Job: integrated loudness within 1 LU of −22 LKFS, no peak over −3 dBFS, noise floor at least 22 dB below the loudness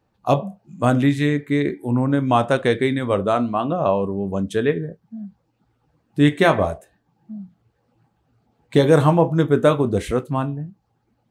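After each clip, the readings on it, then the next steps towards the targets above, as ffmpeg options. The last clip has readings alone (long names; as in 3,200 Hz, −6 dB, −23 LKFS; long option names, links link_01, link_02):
integrated loudness −19.5 LKFS; sample peak −2.5 dBFS; target loudness −22.0 LKFS
→ -af "volume=-2.5dB"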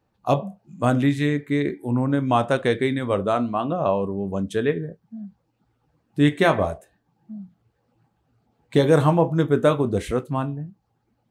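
integrated loudness −22.0 LKFS; sample peak −5.0 dBFS; background noise floor −71 dBFS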